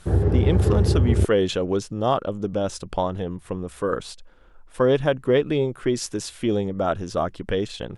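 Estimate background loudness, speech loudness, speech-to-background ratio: -21.0 LUFS, -24.5 LUFS, -3.5 dB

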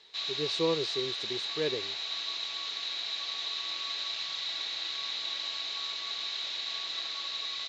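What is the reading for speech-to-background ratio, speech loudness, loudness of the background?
-1.0 dB, -34.0 LUFS, -33.0 LUFS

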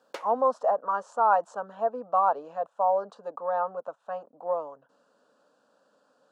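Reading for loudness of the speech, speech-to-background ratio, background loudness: -28.0 LUFS, 16.0 dB, -44.0 LUFS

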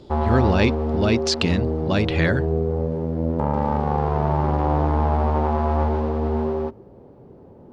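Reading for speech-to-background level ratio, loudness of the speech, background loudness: 0.5 dB, -22.5 LUFS, -23.0 LUFS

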